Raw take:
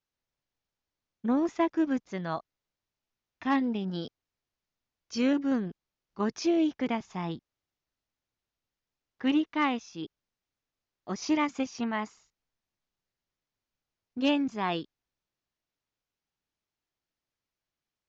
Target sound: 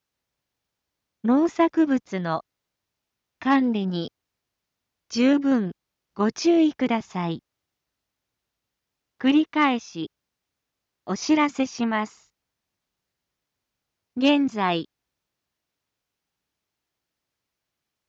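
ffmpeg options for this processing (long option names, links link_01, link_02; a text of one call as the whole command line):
ffmpeg -i in.wav -af "highpass=47,volume=7dB" out.wav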